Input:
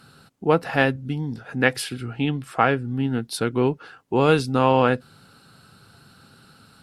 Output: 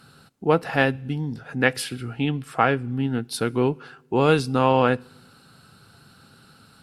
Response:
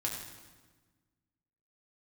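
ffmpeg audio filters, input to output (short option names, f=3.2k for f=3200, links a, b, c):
-filter_complex "[0:a]asplit=2[a][b];[1:a]atrim=start_sample=2205,asetrate=61740,aresample=44100,highshelf=f=4.2k:g=10.5[c];[b][c]afir=irnorm=-1:irlink=0,volume=-24.5dB[d];[a][d]amix=inputs=2:normalize=0,volume=-1dB"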